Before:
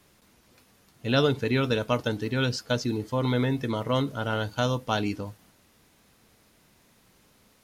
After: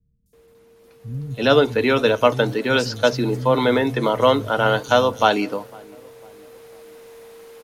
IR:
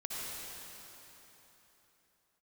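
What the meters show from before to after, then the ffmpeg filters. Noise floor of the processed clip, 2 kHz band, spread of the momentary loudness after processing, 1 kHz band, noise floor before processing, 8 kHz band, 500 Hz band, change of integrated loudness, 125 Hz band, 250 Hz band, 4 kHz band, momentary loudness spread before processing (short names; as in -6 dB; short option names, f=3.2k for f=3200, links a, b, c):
-53 dBFS, +9.5 dB, 8 LU, +11.5 dB, -62 dBFS, +6.0 dB, +11.0 dB, +8.5 dB, +1.5 dB, +5.5 dB, +7.0 dB, 5 LU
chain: -filter_complex "[0:a]asplit=2[a][b];[b]adelay=501,lowpass=f=860:p=1,volume=-23dB,asplit=2[c][d];[d]adelay=501,lowpass=f=860:p=1,volume=0.54,asplit=2[e][f];[f]adelay=501,lowpass=f=860:p=1,volume=0.54,asplit=2[g][h];[h]adelay=501,lowpass=f=860:p=1,volume=0.54[i];[c][e][g][i]amix=inputs=4:normalize=0[j];[a][j]amix=inputs=2:normalize=0,aeval=exprs='val(0)+0.002*sin(2*PI*460*n/s)':c=same,tiltshelf=f=970:g=3.5,acrossover=split=160|5700[k][l][m];[m]adelay=260[n];[l]adelay=330[o];[k][o][n]amix=inputs=3:normalize=0,acrossover=split=420[p][q];[q]dynaudnorm=f=200:g=13:m=14dB[r];[p][r]amix=inputs=2:normalize=0,equalizer=f=91:w=5.2:g=-8,volume=1dB"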